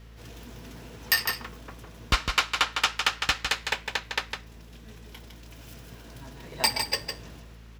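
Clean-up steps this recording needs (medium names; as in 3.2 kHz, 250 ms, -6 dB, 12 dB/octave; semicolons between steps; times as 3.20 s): clip repair -11.5 dBFS; de-hum 56 Hz, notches 4; inverse comb 156 ms -6.5 dB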